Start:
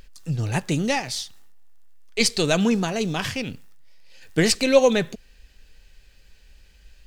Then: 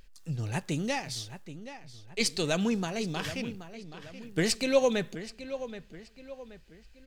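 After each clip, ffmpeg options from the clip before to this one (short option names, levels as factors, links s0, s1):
-filter_complex "[0:a]asplit=2[s0][s1];[s1]adelay=777,lowpass=f=4000:p=1,volume=0.237,asplit=2[s2][s3];[s3]adelay=777,lowpass=f=4000:p=1,volume=0.42,asplit=2[s4][s5];[s5]adelay=777,lowpass=f=4000:p=1,volume=0.42,asplit=2[s6][s7];[s7]adelay=777,lowpass=f=4000:p=1,volume=0.42[s8];[s0][s2][s4][s6][s8]amix=inputs=5:normalize=0,volume=0.398"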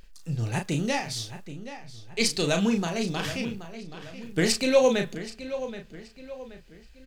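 -filter_complex "[0:a]asplit=2[s0][s1];[s1]adelay=35,volume=0.501[s2];[s0][s2]amix=inputs=2:normalize=0,volume=1.41"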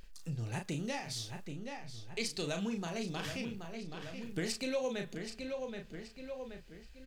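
-af "acompressor=threshold=0.0158:ratio=2.5,volume=0.75"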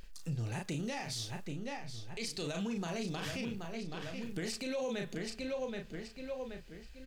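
-af "alimiter=level_in=2.51:limit=0.0631:level=0:latency=1:release=19,volume=0.398,volume=1.33"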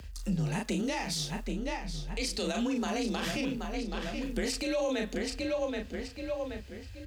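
-af "afreqshift=40,volume=2"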